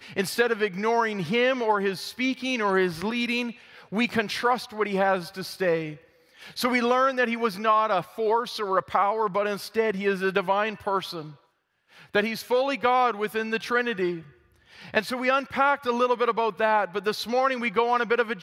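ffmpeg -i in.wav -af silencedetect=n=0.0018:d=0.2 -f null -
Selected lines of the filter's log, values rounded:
silence_start: 11.46
silence_end: 11.89 | silence_duration: 0.44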